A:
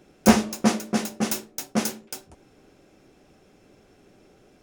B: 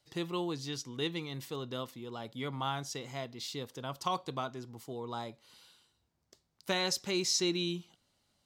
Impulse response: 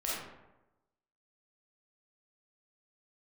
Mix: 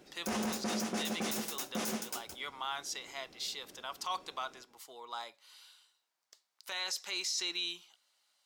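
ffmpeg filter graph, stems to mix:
-filter_complex "[0:a]lowshelf=frequency=190:gain=-8,volume=-3dB,asplit=3[link_01][link_02][link_03];[link_02]volume=-20.5dB[link_04];[link_03]volume=-11dB[link_05];[1:a]highpass=1000,volume=2.5dB[link_06];[2:a]atrim=start_sample=2205[link_07];[link_04][link_07]afir=irnorm=-1:irlink=0[link_08];[link_05]aecho=0:1:168:1[link_09];[link_01][link_06][link_08][link_09]amix=inputs=4:normalize=0,alimiter=level_in=2.5dB:limit=-24dB:level=0:latency=1:release=13,volume=-2.5dB"

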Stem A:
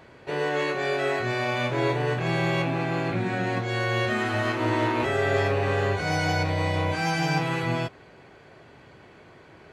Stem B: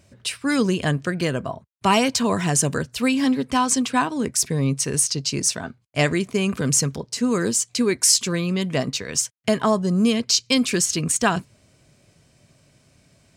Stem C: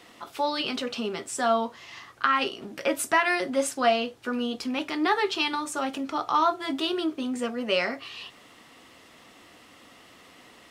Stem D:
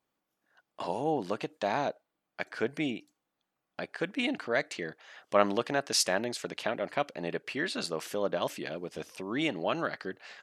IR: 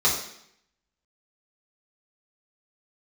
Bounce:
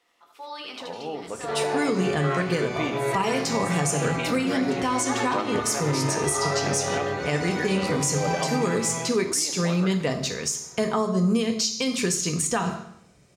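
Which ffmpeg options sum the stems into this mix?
-filter_complex "[0:a]adelay=1200,volume=-9dB,asplit=2[link_01][link_02];[link_02]volume=-8.5dB[link_03];[1:a]adelay=1300,volume=-2.5dB,asplit=2[link_04][link_05];[link_05]volume=-17.5dB[link_06];[2:a]equalizer=frequency=120:width=0.4:gain=-11,bandreject=frequency=73.09:width_type=h:width=4,bandreject=frequency=146.18:width_type=h:width=4,bandreject=frequency=219.27:width_type=h:width=4,bandreject=frequency=292.36:width_type=h:width=4,bandreject=frequency=365.45:width_type=h:width=4,bandreject=frequency=438.54:width_type=h:width=4,bandreject=frequency=511.63:width_type=h:width=4,bandreject=frequency=584.72:width_type=h:width=4,bandreject=frequency=657.81:width_type=h:width=4,bandreject=frequency=730.9:width_type=h:width=4,bandreject=frequency=803.99:width_type=h:width=4,bandreject=frequency=877.08:width_type=h:width=4,bandreject=frequency=950.17:width_type=h:width=4,bandreject=frequency=1023.26:width_type=h:width=4,bandreject=frequency=1096.35:width_type=h:width=4,bandreject=frequency=1169.44:width_type=h:width=4,bandreject=frequency=1242.53:width_type=h:width=4,bandreject=frequency=1315.62:width_type=h:width=4,bandreject=frequency=1388.71:width_type=h:width=4,bandreject=frequency=1461.8:width_type=h:width=4,bandreject=frequency=1534.89:width_type=h:width=4,bandreject=frequency=1607.98:width_type=h:width=4,bandreject=frequency=1681.07:width_type=h:width=4,bandreject=frequency=1754.16:width_type=h:width=4,bandreject=frequency=1827.25:width_type=h:width=4,bandreject=frequency=1900.34:width_type=h:width=4,bandreject=frequency=1973.43:width_type=h:width=4,bandreject=frequency=2046.52:width_type=h:width=4,bandreject=frequency=2119.61:width_type=h:width=4,dynaudnorm=framelen=120:gausssize=11:maxgain=14dB,volume=-16dB,asplit=3[link_07][link_08][link_09];[link_08]volume=-21dB[link_10];[link_09]volume=-5dB[link_11];[3:a]dynaudnorm=framelen=310:gausssize=11:maxgain=11.5dB,volume=-8dB,asplit=3[link_12][link_13][link_14];[link_13]volume=-20.5dB[link_15];[link_14]apad=whole_len=472189[link_16];[link_07][link_16]sidechaincompress=threshold=-42dB:ratio=8:attack=16:release=233[link_17];[4:a]atrim=start_sample=2205[link_18];[link_03][link_06][link_10][link_15]amix=inputs=4:normalize=0[link_19];[link_19][link_18]afir=irnorm=-1:irlink=0[link_20];[link_11]aecho=0:1:78:1[link_21];[link_01][link_04][link_17][link_12][link_20][link_21]amix=inputs=6:normalize=0,alimiter=limit=-14dB:level=0:latency=1:release=167"

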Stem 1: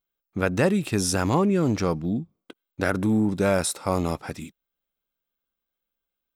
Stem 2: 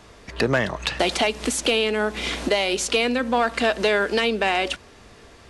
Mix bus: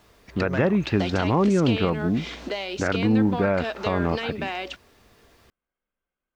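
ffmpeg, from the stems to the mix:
ffmpeg -i stem1.wav -i stem2.wav -filter_complex "[0:a]lowpass=frequency=2500:width=0.5412,lowpass=frequency=2500:width=1.3066,volume=2.5dB[link_01];[1:a]lowpass=frequency=6500:width=0.5412,lowpass=frequency=6500:width=1.3066,acrusher=bits=8:mix=0:aa=0.000001,volume=-9dB[link_02];[link_01][link_02]amix=inputs=2:normalize=0,alimiter=limit=-11.5dB:level=0:latency=1:release=129" out.wav

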